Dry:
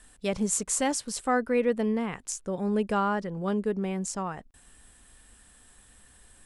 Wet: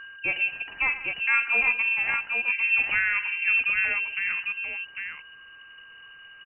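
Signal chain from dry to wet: whine 1300 Hz -41 dBFS; tapped delay 48/112/186/802 ms -13.5/-15/-19/-4.5 dB; inverted band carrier 2900 Hz; gain +1.5 dB

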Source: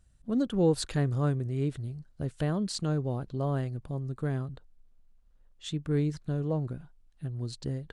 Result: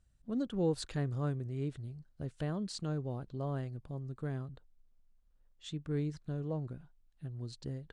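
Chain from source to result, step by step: LPF 8900 Hz 12 dB/oct; gain -7 dB

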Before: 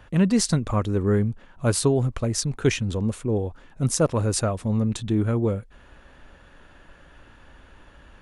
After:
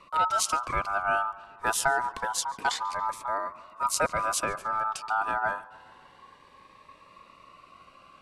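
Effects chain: ring modulator 1100 Hz; darkening echo 0.141 s, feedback 64%, low-pass 4600 Hz, level -20 dB; cascading phaser rising 0.27 Hz

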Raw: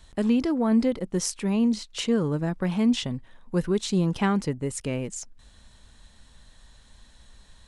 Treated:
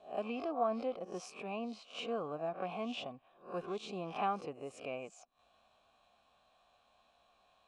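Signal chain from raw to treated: spectral swells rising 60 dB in 0.35 s; vowel filter a; gain +3 dB

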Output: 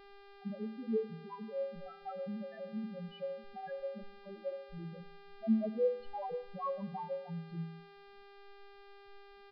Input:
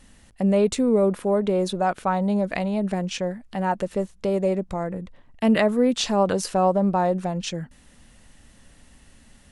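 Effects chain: random spectral dropouts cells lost 34%; 1.17–1.96 hard clip -24 dBFS, distortion -16 dB; 5.85–7.09 comb 6.4 ms, depth 63%; vibrato 0.56 Hz 9.4 cents; resonator bank A2 fifth, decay 0.46 s; loudest bins only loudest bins 2; buzz 400 Hz, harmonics 28, -60 dBFS -4 dB/oct; high shelf 3500 Hz -10.5 dB; on a send at -20.5 dB: reverb RT60 0.70 s, pre-delay 71 ms; on the sum: downsampling 11025 Hz; gain +4.5 dB

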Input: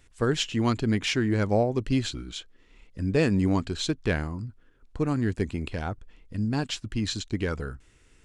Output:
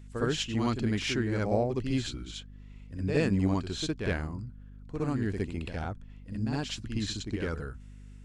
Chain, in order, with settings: reverse echo 63 ms -5.5 dB; hum 50 Hz, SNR 16 dB; gain -5 dB

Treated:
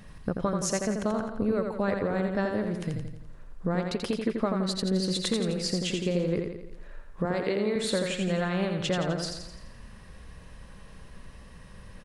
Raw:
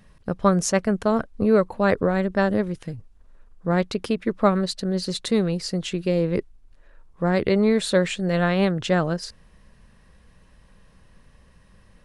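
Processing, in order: 7.25–7.76 HPF 250 Hz; compressor 5:1, threshold -32 dBFS, peak gain reduction 17.5 dB; on a send: feedback echo 85 ms, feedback 52%, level -5 dB; on the sum: gain +5 dB

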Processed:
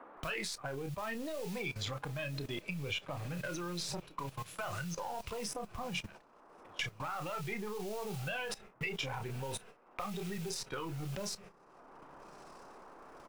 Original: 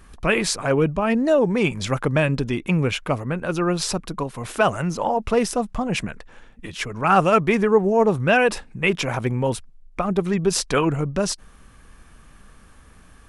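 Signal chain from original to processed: half-wave gain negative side -7 dB; limiter -15.5 dBFS, peak gain reduction 10 dB; bell 250 Hz -11 dB 0.25 oct; doubler 29 ms -9 dB; diffused feedback echo 1.18 s, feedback 57%, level -14 dB; spectral noise reduction 10 dB; level quantiser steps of 18 dB; modulation noise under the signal 24 dB; gate -50 dBFS, range -29 dB; band noise 230–1200 Hz -69 dBFS; bell 2900 Hz +6.5 dB 2.2 oct; three-band squash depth 70%; gain -4.5 dB

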